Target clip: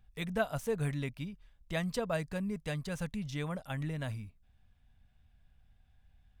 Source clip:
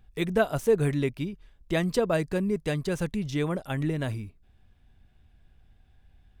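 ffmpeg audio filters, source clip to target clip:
-af "equalizer=f=360:w=2.7:g=-14,volume=0.501"

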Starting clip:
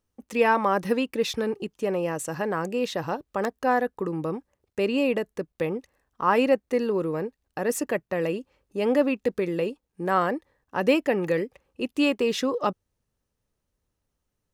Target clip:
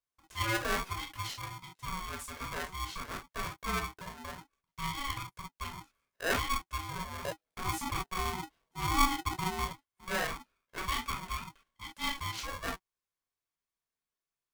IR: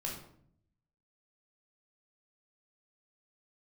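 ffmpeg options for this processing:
-filter_complex "[0:a]asetnsamples=n=441:p=0,asendcmd='7.25 highpass f 110;9.66 highpass f 600',highpass=540[s0];[1:a]atrim=start_sample=2205,atrim=end_sample=3087[s1];[s0][s1]afir=irnorm=-1:irlink=0,aeval=exprs='val(0)*sgn(sin(2*PI*560*n/s))':c=same,volume=0.355"

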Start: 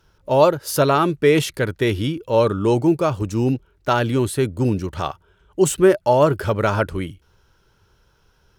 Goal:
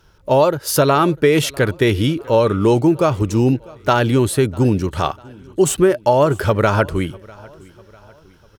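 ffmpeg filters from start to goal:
-filter_complex "[0:a]acompressor=threshold=0.178:ratio=6,asplit=2[s0][s1];[s1]aecho=0:1:648|1296|1944:0.0631|0.0303|0.0145[s2];[s0][s2]amix=inputs=2:normalize=0,volume=1.88"

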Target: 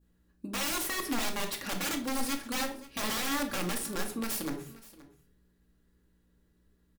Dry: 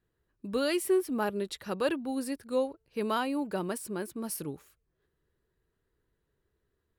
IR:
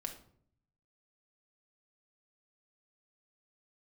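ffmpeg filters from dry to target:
-filter_complex "[0:a]adynamicequalizer=threshold=0.00398:dfrequency=2000:dqfactor=0.78:tfrequency=2000:tqfactor=0.78:attack=5:release=100:ratio=0.375:range=3.5:mode=boostabove:tftype=bell,asplit=2[s0][s1];[s1]acompressor=threshold=0.0126:ratio=10,volume=1.12[s2];[s0][s2]amix=inputs=2:normalize=0,aeval=exprs='val(0)+0.000708*(sin(2*PI*60*n/s)+sin(2*PI*2*60*n/s)/2+sin(2*PI*3*60*n/s)/3+sin(2*PI*4*60*n/s)/4+sin(2*PI*5*60*n/s)/5)':c=same,acrossover=split=3400[s3][s4];[s4]acontrast=25[s5];[s3][s5]amix=inputs=2:normalize=0,aeval=exprs='(mod(15.8*val(0)+1,2)-1)/15.8':c=same,aecho=1:1:525:0.106[s6];[1:a]atrim=start_sample=2205,afade=t=out:st=0.38:d=0.01,atrim=end_sample=17199,asetrate=52920,aresample=44100[s7];[s6][s7]afir=irnorm=-1:irlink=0"

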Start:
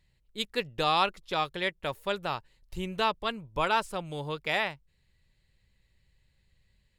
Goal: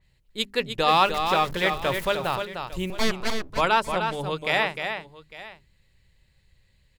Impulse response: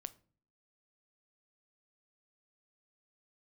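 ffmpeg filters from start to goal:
-filter_complex "[0:a]asettb=1/sr,asplit=3[s0][s1][s2];[s0]atrim=end=0.884[s3];[s1]atrim=start=0.88:end=2.15,asetpts=PTS-STARTPTS,afade=t=in:d=0.004:c=qsin,afade=t=out:st=1.266:d=0.004:c=qsin,aeval=exprs='val(0)+0.5*0.0168*sgn(val(0))':c=same[s4];[s2]atrim=start=2.146[s5];[s3][s4]acrossfade=d=0.004:c1=hsin:c2=qsin[s6];[s6][s5]acrossfade=d=0.004:c1=qsin:c2=hsin,bandreject=f=50:t=h:w=6,bandreject=f=100:t=h:w=6,bandreject=f=150:t=h:w=6,bandreject=f=200:t=h:w=6,bandreject=f=250:t=h:w=6,bandreject=f=300:t=h:w=6,bandreject=f=350:t=h:w=6,bandreject=f=400:t=h:w=6,asettb=1/sr,asplit=3[s7][s8][s9];[s7]atrim=end=2.904[s10];[s8]atrim=start=2.9:end=3.5,asetpts=PTS-STARTPTS,afade=t=in:d=0.004:c=qsin,afade=t=out:st=0.596:d=0.004:c=qsin,aeval=exprs='abs(val(0))':c=same[s11];[s9]atrim=start=3.496[s12];[s10][s11]acrossfade=d=0.004:c1=hsin:c2=qsin[s13];[s13][s12]acrossfade=d=0.004:c1=qsin:c2=hsin,aecho=1:1:304|853:0.473|0.126,adynamicequalizer=threshold=0.01:dfrequency=3400:dqfactor=0.7:tfrequency=3400:tqfactor=0.7:attack=5:release=100:ratio=0.375:range=2.5:mode=cutabove:tftype=highshelf,volume=1.88"

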